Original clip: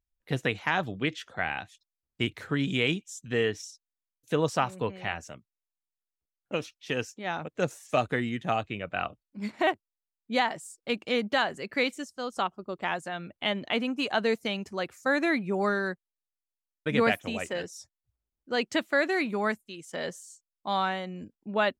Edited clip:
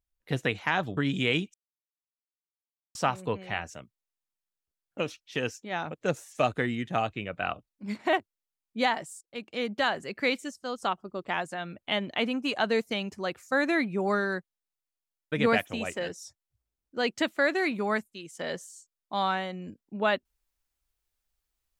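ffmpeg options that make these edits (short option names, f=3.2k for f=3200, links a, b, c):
-filter_complex "[0:a]asplit=5[a][b][c][d][e];[a]atrim=end=0.972[f];[b]atrim=start=2.508:end=3.08,asetpts=PTS-STARTPTS,afade=t=out:st=0.568:d=0.004:c=hsin[g];[c]atrim=start=3.08:end=4.49,asetpts=PTS-STARTPTS,volume=0[h];[d]atrim=start=4.49:end=10.75,asetpts=PTS-STARTPTS,afade=t=in:d=0.004:c=hsin,afade=t=out:st=6.256:d=0.004:c=hsin:silence=0.16788[i];[e]atrim=start=10.75,asetpts=PTS-STARTPTS,afade=t=in:d=0.72:silence=0.16788[j];[g][h][i][j]concat=n=4:v=0:a=1[k];[f][k]acrossfade=d=0.004:c1=hsin:c2=hsin"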